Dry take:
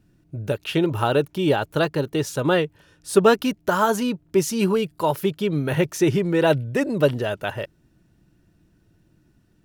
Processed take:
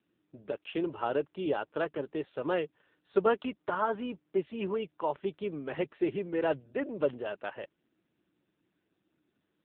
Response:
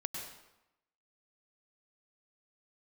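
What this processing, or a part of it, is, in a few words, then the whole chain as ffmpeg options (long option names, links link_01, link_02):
telephone: -af "highpass=270,lowpass=3500,volume=-9dB" -ar 8000 -c:a libopencore_amrnb -b:a 6700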